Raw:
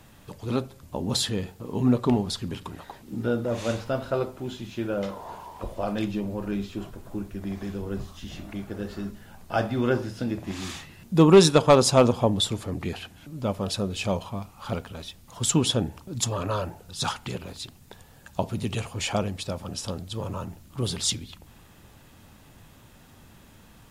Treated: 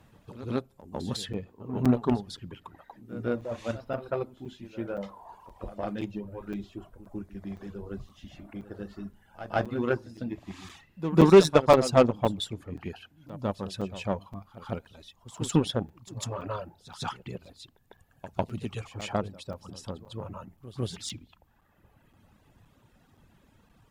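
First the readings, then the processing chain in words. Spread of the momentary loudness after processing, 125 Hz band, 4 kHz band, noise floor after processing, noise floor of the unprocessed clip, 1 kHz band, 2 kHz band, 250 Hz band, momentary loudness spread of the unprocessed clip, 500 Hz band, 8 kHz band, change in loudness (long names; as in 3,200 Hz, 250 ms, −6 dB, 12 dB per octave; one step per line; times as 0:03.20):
21 LU, −4.5 dB, −9.0 dB, −64 dBFS, −53 dBFS, −2.5 dB, −3.5 dB, −3.0 dB, 17 LU, −2.0 dB, −11.5 dB, −2.0 dB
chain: reverb reduction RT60 1.6 s
high-shelf EQ 3,300 Hz −9 dB
harmonic generator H 7 −24 dB, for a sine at −7 dBFS
echo ahead of the sound 151 ms −14 dB
regular buffer underruns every 0.52 s, samples 256, zero, from 0:00.81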